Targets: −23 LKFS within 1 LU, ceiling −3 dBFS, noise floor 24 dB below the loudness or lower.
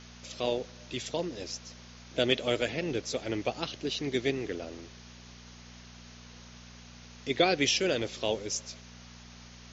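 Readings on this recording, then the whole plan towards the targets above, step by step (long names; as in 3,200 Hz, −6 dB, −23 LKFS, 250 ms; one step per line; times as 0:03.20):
mains hum 60 Hz; hum harmonics up to 240 Hz; level of the hum −50 dBFS; background noise floor −51 dBFS; target noise floor −55 dBFS; integrated loudness −31.0 LKFS; sample peak −9.5 dBFS; target loudness −23.0 LKFS
→ hum removal 60 Hz, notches 4
noise reduction from a noise print 6 dB
level +8 dB
brickwall limiter −3 dBFS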